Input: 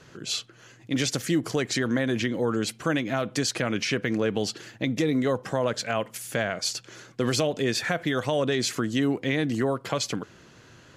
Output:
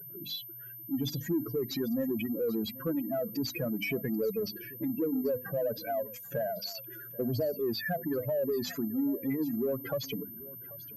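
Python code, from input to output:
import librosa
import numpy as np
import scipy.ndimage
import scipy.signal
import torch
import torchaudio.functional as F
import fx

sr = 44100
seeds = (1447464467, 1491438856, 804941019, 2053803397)

p1 = fx.spec_expand(x, sr, power=3.4)
p2 = fx.hum_notches(p1, sr, base_hz=50, count=6)
p3 = 10.0 ** (-27.0 / 20.0) * np.tanh(p2 / 10.0 ** (-27.0 / 20.0))
p4 = p2 + F.gain(torch.from_numpy(p3), -7.5).numpy()
p5 = fx.notch(p4, sr, hz=4200.0, q=7.9)
p6 = p5 + fx.echo_single(p5, sr, ms=787, db=-19.5, dry=0)
p7 = fx.pwm(p6, sr, carrier_hz=13000.0)
y = F.gain(torch.from_numpy(p7), -6.5).numpy()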